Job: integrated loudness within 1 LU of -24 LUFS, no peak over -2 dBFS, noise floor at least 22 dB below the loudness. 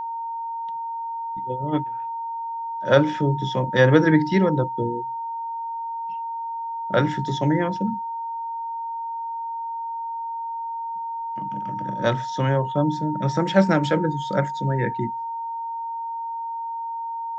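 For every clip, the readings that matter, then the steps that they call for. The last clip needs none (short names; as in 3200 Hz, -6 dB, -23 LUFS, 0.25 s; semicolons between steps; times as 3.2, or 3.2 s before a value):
steady tone 920 Hz; tone level -27 dBFS; loudness -24.5 LUFS; peak -2.0 dBFS; loudness target -24.0 LUFS
-> notch 920 Hz, Q 30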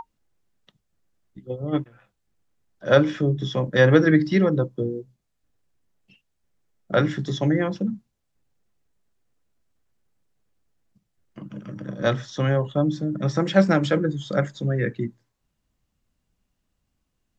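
steady tone none; loudness -22.5 LUFS; peak -2.0 dBFS; loudness target -24.0 LUFS
-> gain -1.5 dB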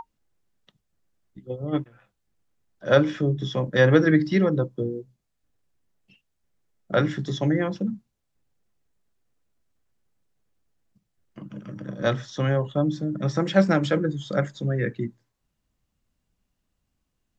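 loudness -24.0 LUFS; peak -3.5 dBFS; noise floor -78 dBFS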